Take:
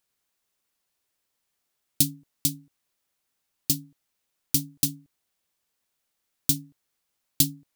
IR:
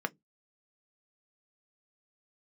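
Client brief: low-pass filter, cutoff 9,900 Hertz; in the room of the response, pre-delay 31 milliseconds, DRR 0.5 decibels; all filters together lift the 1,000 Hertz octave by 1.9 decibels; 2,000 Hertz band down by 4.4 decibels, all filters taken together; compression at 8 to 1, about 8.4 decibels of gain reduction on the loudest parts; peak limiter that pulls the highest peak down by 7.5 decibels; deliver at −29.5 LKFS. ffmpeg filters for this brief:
-filter_complex "[0:a]lowpass=9900,equalizer=frequency=1000:width_type=o:gain=4,equalizer=frequency=2000:width_type=o:gain=-7,acompressor=threshold=-28dB:ratio=8,alimiter=limit=-16dB:level=0:latency=1,asplit=2[link_01][link_02];[1:a]atrim=start_sample=2205,adelay=31[link_03];[link_02][link_03]afir=irnorm=-1:irlink=0,volume=-6dB[link_04];[link_01][link_04]amix=inputs=2:normalize=0,volume=10.5dB"

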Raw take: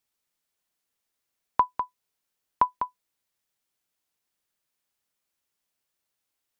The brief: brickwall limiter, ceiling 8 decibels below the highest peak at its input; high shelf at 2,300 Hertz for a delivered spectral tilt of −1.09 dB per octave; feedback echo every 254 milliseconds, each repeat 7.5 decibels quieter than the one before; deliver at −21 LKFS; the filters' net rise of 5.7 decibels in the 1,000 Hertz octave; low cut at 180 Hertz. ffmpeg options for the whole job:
ffmpeg -i in.wav -af "highpass=180,equalizer=frequency=1000:width_type=o:gain=5,highshelf=frequency=2300:gain=5,alimiter=limit=-11.5dB:level=0:latency=1,aecho=1:1:254|508|762|1016|1270:0.422|0.177|0.0744|0.0312|0.0131,volume=8.5dB" out.wav

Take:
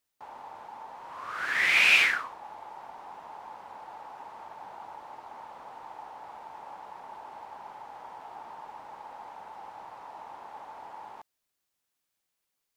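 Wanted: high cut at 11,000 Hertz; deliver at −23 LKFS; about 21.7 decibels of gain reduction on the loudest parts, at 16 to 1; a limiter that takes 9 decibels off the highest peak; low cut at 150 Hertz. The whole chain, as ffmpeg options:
ffmpeg -i in.wav -af "highpass=150,lowpass=11000,acompressor=threshold=-39dB:ratio=16,volume=24.5dB,alimiter=limit=-14.5dB:level=0:latency=1" out.wav

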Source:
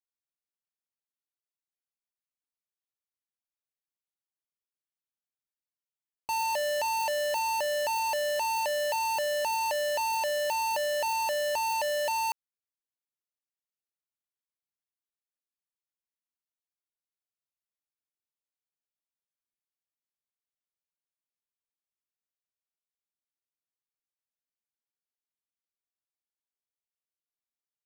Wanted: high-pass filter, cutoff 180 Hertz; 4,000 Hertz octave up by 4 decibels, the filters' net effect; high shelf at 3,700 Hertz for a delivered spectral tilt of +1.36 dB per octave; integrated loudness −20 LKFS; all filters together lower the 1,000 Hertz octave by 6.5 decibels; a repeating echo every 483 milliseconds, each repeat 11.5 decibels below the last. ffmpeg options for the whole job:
ffmpeg -i in.wav -af "highpass=180,equalizer=frequency=1000:width_type=o:gain=-7.5,highshelf=frequency=3700:gain=4,equalizer=frequency=4000:width_type=o:gain=3,aecho=1:1:483|966|1449:0.266|0.0718|0.0194,volume=9dB" out.wav

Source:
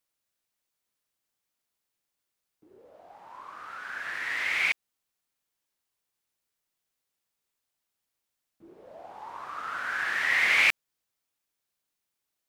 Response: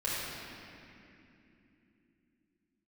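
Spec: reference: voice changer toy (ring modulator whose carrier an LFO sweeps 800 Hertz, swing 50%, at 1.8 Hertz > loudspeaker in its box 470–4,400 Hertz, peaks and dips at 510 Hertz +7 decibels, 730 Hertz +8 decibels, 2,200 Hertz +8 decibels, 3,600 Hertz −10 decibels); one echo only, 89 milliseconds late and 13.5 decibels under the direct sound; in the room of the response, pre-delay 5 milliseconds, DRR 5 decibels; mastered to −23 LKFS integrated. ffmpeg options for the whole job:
-filter_complex "[0:a]aecho=1:1:89:0.211,asplit=2[link_01][link_02];[1:a]atrim=start_sample=2205,adelay=5[link_03];[link_02][link_03]afir=irnorm=-1:irlink=0,volume=-13dB[link_04];[link_01][link_04]amix=inputs=2:normalize=0,aeval=exprs='val(0)*sin(2*PI*800*n/s+800*0.5/1.8*sin(2*PI*1.8*n/s))':channel_layout=same,highpass=470,equalizer=frequency=510:width_type=q:width=4:gain=7,equalizer=frequency=730:width_type=q:width=4:gain=8,equalizer=frequency=2200:width_type=q:width=4:gain=8,equalizer=frequency=3600:width_type=q:width=4:gain=-10,lowpass=frequency=4400:width=0.5412,lowpass=frequency=4400:width=1.3066,volume=5.5dB"

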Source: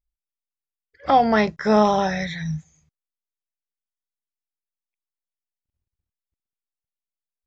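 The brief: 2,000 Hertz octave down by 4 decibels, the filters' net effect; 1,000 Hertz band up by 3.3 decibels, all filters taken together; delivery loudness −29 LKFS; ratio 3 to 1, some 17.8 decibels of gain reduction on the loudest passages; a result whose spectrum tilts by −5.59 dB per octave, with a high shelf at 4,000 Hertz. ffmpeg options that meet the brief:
ffmpeg -i in.wav -af "equalizer=frequency=1000:width_type=o:gain=6,equalizer=frequency=2000:width_type=o:gain=-5.5,highshelf=frequency=4000:gain=-6.5,acompressor=threshold=-34dB:ratio=3,volume=5dB" out.wav

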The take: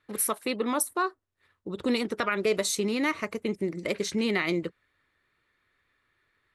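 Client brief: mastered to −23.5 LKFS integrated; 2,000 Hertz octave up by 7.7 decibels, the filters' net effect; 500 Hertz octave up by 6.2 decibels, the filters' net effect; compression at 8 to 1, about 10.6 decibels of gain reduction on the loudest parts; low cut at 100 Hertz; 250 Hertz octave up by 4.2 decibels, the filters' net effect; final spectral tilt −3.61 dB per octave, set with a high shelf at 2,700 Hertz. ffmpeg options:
ffmpeg -i in.wav -af "highpass=100,equalizer=frequency=250:width_type=o:gain=3.5,equalizer=frequency=500:width_type=o:gain=6,equalizer=frequency=2000:width_type=o:gain=6,highshelf=frequency=2700:gain=6.5,acompressor=threshold=-27dB:ratio=8,volume=8dB" out.wav

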